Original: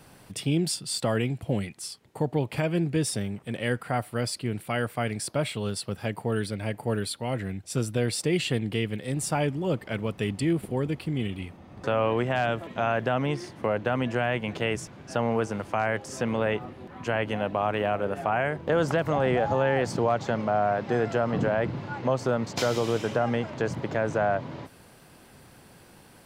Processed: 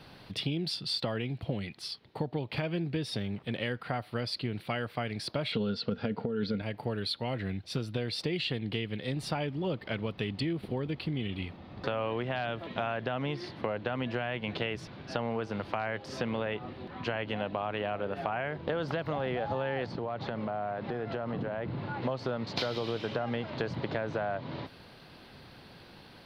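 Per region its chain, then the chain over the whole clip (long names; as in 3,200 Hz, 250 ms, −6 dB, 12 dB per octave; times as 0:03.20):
0:05.52–0:06.62: low-pass filter 6,400 Hz 24 dB per octave + hollow resonant body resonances 230/450/1,400 Hz, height 15 dB, ringing for 50 ms + compressor whose output falls as the input rises −21 dBFS
0:19.86–0:22.02: low-pass filter 2,200 Hz 6 dB per octave + downward compressor 4 to 1, threshold −31 dBFS
whole clip: high shelf with overshoot 5,600 Hz −11 dB, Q 3; downward compressor, threshold −29 dBFS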